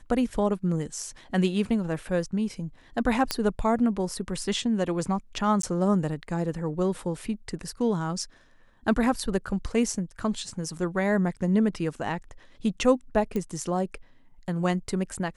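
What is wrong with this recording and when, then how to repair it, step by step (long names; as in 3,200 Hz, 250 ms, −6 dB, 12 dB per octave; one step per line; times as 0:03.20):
0:03.31: click −8 dBFS
0:05.62–0:05.63: drop-out 13 ms
0:13.36: click −18 dBFS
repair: click removal
repair the gap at 0:05.62, 13 ms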